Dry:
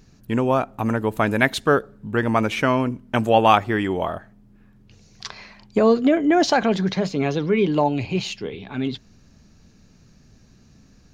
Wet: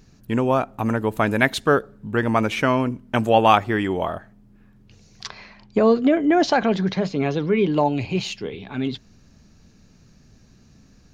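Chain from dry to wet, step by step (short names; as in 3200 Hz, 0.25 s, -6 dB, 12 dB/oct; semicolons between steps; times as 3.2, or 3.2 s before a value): 5.27–7.77 air absorption 74 m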